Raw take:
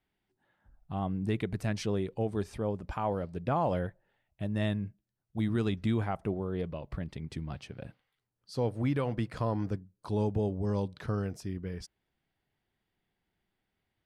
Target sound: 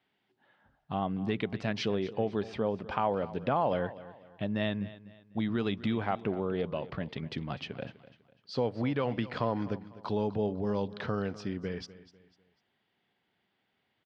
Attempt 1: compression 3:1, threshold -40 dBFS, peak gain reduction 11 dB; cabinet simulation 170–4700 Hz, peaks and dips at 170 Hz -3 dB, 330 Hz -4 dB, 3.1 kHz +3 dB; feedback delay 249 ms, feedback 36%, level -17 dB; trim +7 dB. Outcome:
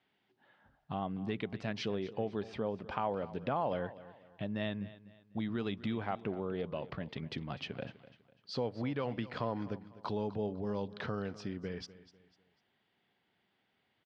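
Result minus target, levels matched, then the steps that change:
compression: peak gain reduction +5.5 dB
change: compression 3:1, threshold -32 dBFS, peak gain reduction 6 dB

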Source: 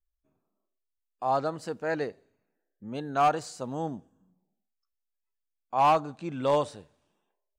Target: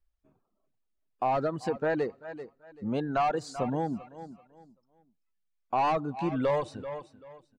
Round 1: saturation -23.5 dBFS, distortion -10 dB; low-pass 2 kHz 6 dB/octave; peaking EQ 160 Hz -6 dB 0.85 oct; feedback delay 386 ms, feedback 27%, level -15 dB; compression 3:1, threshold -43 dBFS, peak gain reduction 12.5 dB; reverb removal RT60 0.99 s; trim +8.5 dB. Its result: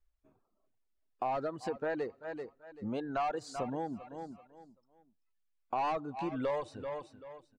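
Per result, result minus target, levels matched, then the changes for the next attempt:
compression: peak gain reduction +6.5 dB; 125 Hz band -3.5 dB
change: compression 3:1, threshold -33.5 dBFS, peak gain reduction 6 dB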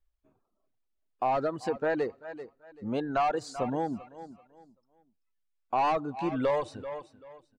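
125 Hz band -4.5 dB
remove: peaking EQ 160 Hz -6 dB 0.85 oct

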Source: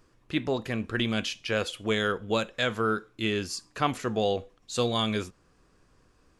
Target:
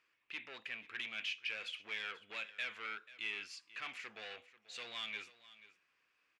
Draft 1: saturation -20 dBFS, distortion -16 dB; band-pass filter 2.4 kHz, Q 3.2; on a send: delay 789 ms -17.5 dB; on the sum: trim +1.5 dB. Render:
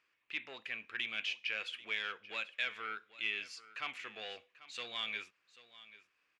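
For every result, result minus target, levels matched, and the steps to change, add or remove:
echo 302 ms late; saturation: distortion -8 dB
change: delay 487 ms -17.5 dB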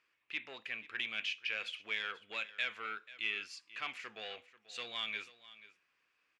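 saturation: distortion -8 dB
change: saturation -28.5 dBFS, distortion -8 dB

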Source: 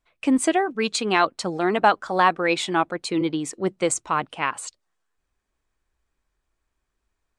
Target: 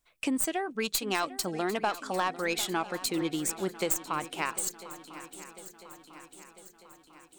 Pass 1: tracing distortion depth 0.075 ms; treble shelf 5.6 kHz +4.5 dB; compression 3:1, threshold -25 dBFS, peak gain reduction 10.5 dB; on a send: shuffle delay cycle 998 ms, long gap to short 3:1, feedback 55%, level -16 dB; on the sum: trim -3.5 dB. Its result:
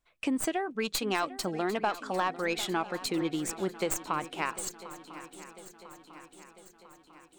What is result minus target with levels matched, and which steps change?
8 kHz band -3.5 dB
change: treble shelf 5.6 kHz +16 dB

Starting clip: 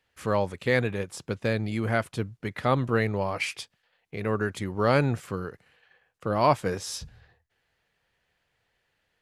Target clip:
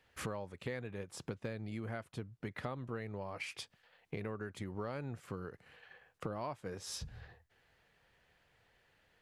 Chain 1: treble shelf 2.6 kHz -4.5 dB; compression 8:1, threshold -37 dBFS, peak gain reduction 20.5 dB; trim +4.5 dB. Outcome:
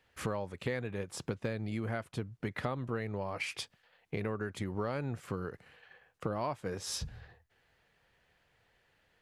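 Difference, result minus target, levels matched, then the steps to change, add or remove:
compression: peak gain reduction -5.5 dB
change: compression 8:1, threshold -43.5 dBFS, peak gain reduction 26.5 dB

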